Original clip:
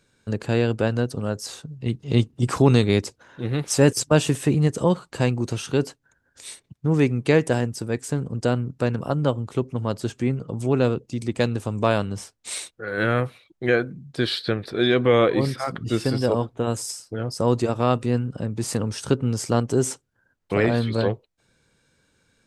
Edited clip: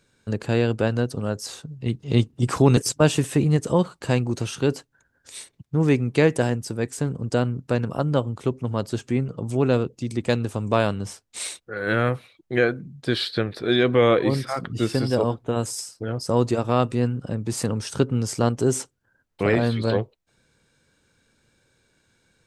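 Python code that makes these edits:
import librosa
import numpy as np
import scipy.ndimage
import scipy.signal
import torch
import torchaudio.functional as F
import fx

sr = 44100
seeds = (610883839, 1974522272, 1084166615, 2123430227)

y = fx.edit(x, sr, fx.cut(start_s=2.77, length_s=1.11), tone=tone)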